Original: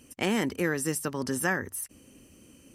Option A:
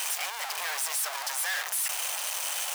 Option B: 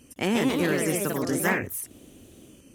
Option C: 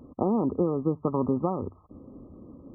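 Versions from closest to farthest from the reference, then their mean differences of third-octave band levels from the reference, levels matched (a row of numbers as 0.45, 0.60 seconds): B, C, A; 4.5, 14.0, 21.5 decibels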